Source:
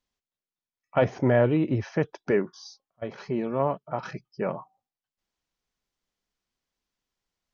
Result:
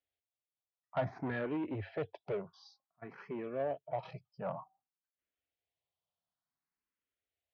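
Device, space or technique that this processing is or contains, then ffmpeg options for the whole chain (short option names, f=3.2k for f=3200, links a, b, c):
barber-pole phaser into a guitar amplifier: -filter_complex "[0:a]asplit=2[a][b];[b]afreqshift=0.55[c];[a][c]amix=inputs=2:normalize=1,asoftclip=type=tanh:threshold=-23dB,highpass=76,equalizer=f=95:t=q:w=4:g=6,equalizer=f=220:t=q:w=4:g=-7,equalizer=f=360:t=q:w=4:g=-4,equalizer=f=680:t=q:w=4:g=6,lowpass=f=4k:w=0.5412,lowpass=f=4k:w=1.3066,volume=-6dB"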